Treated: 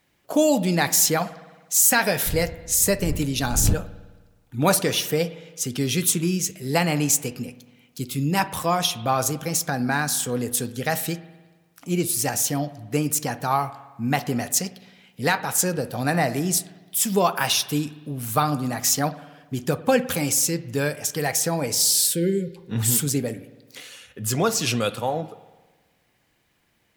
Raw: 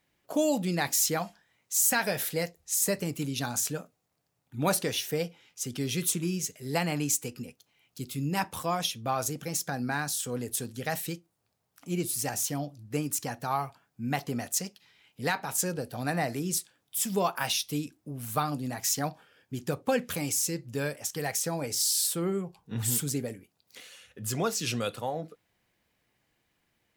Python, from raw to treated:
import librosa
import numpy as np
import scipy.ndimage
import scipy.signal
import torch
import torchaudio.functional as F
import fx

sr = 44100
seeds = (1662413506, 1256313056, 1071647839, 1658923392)

y = fx.dmg_wind(x, sr, seeds[0], corner_hz=100.0, level_db=-28.0, at=(2.25, 3.73), fade=0.02)
y = fx.spec_erase(y, sr, start_s=21.69, length_s=0.87, low_hz=570.0, high_hz=1400.0)
y = fx.rev_spring(y, sr, rt60_s=1.3, pass_ms=(53,), chirp_ms=60, drr_db=15.0)
y = y * 10.0 ** (7.5 / 20.0)